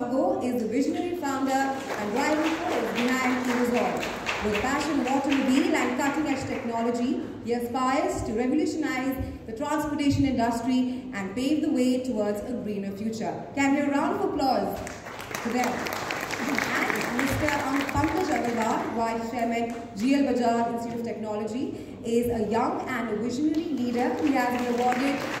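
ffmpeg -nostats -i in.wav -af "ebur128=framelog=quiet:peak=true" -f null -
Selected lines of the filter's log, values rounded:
Integrated loudness:
  I:         -26.6 LUFS
  Threshold: -36.6 LUFS
Loudness range:
  LRA:         2.0 LU
  Threshold: -46.7 LUFS
  LRA low:   -27.7 LUFS
  LRA high:  -25.7 LUFS
True peak:
  Peak:       -7.8 dBFS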